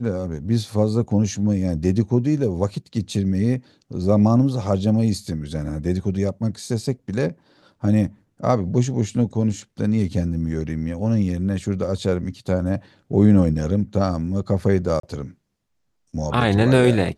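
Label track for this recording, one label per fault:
15.000000	15.030000	dropout 33 ms

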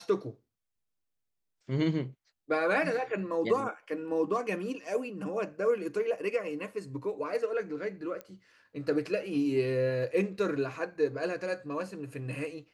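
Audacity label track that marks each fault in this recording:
8.210000	8.210000	pop -26 dBFS

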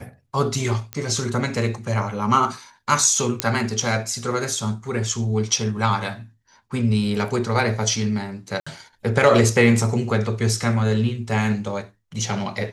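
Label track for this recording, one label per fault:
0.930000	0.930000	pop -12 dBFS
3.400000	3.400000	pop -1 dBFS
8.600000	8.660000	dropout 65 ms

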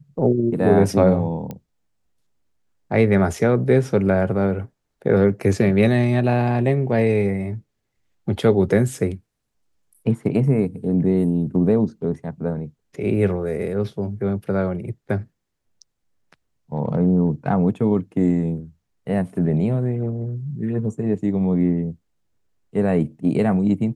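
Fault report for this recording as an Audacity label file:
1.510000	1.510000	pop -18 dBFS

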